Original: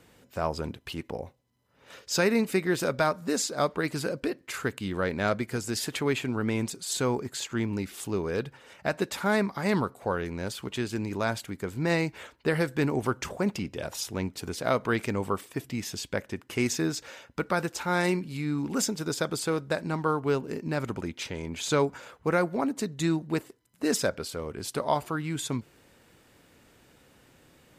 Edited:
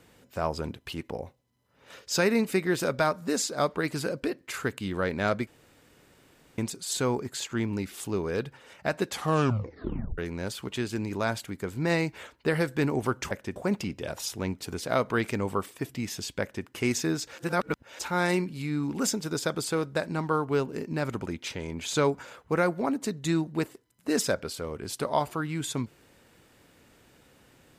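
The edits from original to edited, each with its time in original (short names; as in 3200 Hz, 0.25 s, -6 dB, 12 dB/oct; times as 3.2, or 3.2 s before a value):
5.47–6.58 room tone
9.06 tape stop 1.12 s
16.16–16.41 copy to 13.31
17.13–17.74 reverse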